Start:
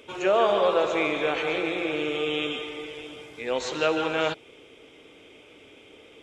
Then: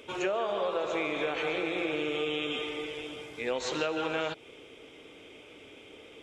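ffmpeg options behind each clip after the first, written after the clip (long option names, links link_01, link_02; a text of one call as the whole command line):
ffmpeg -i in.wav -af "acompressor=threshold=-27dB:ratio=10" out.wav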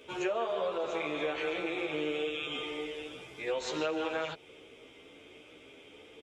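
ffmpeg -i in.wav -filter_complex "[0:a]asplit=2[link_01][link_02];[link_02]adelay=12,afreqshift=1.2[link_03];[link_01][link_03]amix=inputs=2:normalize=1" out.wav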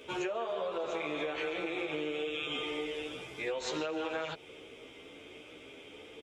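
ffmpeg -i in.wav -af "acompressor=threshold=-35dB:ratio=6,volume=3dB" out.wav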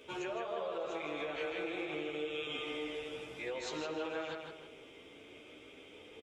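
ffmpeg -i in.wav -filter_complex "[0:a]asplit=2[link_01][link_02];[link_02]adelay=160,lowpass=frequency=3800:poles=1,volume=-4dB,asplit=2[link_03][link_04];[link_04]adelay=160,lowpass=frequency=3800:poles=1,volume=0.38,asplit=2[link_05][link_06];[link_06]adelay=160,lowpass=frequency=3800:poles=1,volume=0.38,asplit=2[link_07][link_08];[link_08]adelay=160,lowpass=frequency=3800:poles=1,volume=0.38,asplit=2[link_09][link_10];[link_10]adelay=160,lowpass=frequency=3800:poles=1,volume=0.38[link_11];[link_01][link_03][link_05][link_07][link_09][link_11]amix=inputs=6:normalize=0,volume=-5dB" out.wav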